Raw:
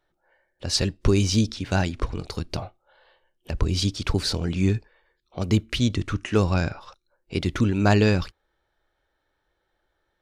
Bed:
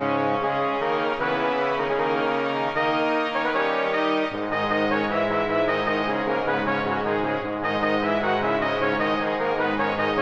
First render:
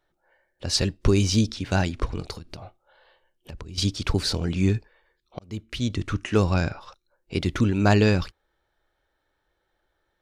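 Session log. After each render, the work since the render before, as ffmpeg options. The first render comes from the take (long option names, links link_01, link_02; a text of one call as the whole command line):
ffmpeg -i in.wav -filter_complex "[0:a]asettb=1/sr,asplit=3[link_01][link_02][link_03];[link_01]atrim=end=2.334[link_04];[link_02]atrim=start=2.33:end=3.78,asetpts=PTS-STARTPTS,afade=type=in:duration=0.004:curve=qsin,afade=type=out:start_time=1.446:duration=0.004:curve=qsin,acompressor=threshold=-34dB:ratio=10:attack=3.2:release=140:knee=1:detection=peak[link_05];[link_03]atrim=start=3.776[link_06];[link_04][link_05]acrossfade=duration=0.004:curve1=hsin:curve2=qsin[link_07];[link_07][link_06]acrossfade=duration=0.004:curve1=qsin:curve2=hsin,asplit=2[link_08][link_09];[link_08]atrim=end=5.39,asetpts=PTS-STARTPTS,afade=type=out:start_time=5.386:duration=0.004:curve=hsin[link_10];[link_09]atrim=start=5.39,asetpts=PTS-STARTPTS,afade=type=in:duration=0.74[link_11];[link_10][link_11]concat=n=2:v=0:a=1" out.wav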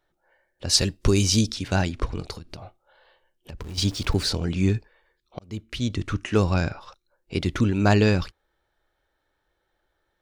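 ffmpeg -i in.wav -filter_complex "[0:a]asettb=1/sr,asplit=3[link_01][link_02][link_03];[link_01]atrim=end=0.694[link_04];[link_02]atrim=start=0.69:end=1.68,asetpts=PTS-STARTPTS,afade=type=in:duration=0.004:curve=qsin,afade=type=out:start_time=0.986:duration=0.004:curve=qsin,aemphasis=mode=production:type=cd[link_05];[link_03]atrim=start=1.676[link_06];[link_04][link_05]acrossfade=duration=0.004:curve1=hsin:curve2=qsin[link_07];[link_07][link_06]acrossfade=duration=0.004:curve1=qsin:curve2=hsin,asettb=1/sr,asplit=3[link_08][link_09][link_10];[link_08]atrim=end=3.604[link_11];[link_09]atrim=start=3.6:end=4.29,asetpts=PTS-STARTPTS,afade=type=in:duration=0.004:curve=qsin,afade=type=out:start_time=0.686:duration=0.004:curve=qsin,aeval=exprs='val(0)+0.5*0.0133*sgn(val(0))':channel_layout=same[link_12];[link_10]atrim=start=4.286[link_13];[link_11][link_12]acrossfade=duration=0.004:curve1=hsin:curve2=qsin[link_14];[link_14][link_13]acrossfade=duration=0.004:curve1=qsin:curve2=hsin" out.wav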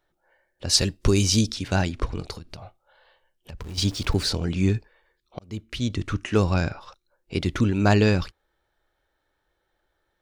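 ffmpeg -i in.wav -filter_complex "[0:a]asettb=1/sr,asplit=3[link_01][link_02][link_03];[link_01]atrim=end=2.494[link_04];[link_02]atrim=start=2.49:end=3.66,asetpts=PTS-STARTPTS,afade=type=in:duration=0.004:curve=qsin,afade=type=out:start_time=1.166:duration=0.004:curve=qsin,equalizer=frequency=320:width=1.7:gain=-6[link_05];[link_03]atrim=start=3.656[link_06];[link_04][link_05]acrossfade=duration=0.004:curve1=hsin:curve2=qsin[link_07];[link_07][link_06]acrossfade=duration=0.004:curve1=qsin:curve2=hsin" out.wav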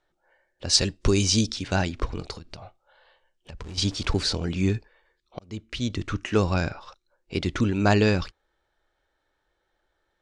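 ffmpeg -i in.wav -af "lowpass=frequency=8400:width=0.5412,lowpass=frequency=8400:width=1.3066,equalizer=frequency=110:width_type=o:width=2.1:gain=-3" out.wav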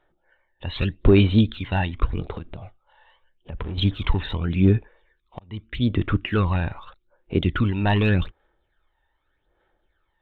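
ffmpeg -i in.wav -af "aresample=8000,asoftclip=type=hard:threshold=-15dB,aresample=44100,aphaser=in_gain=1:out_gain=1:delay=1.1:decay=0.6:speed=0.83:type=sinusoidal" out.wav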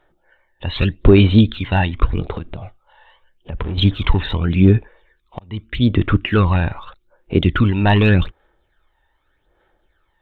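ffmpeg -i in.wav -af "volume=6.5dB,alimiter=limit=-2dB:level=0:latency=1" out.wav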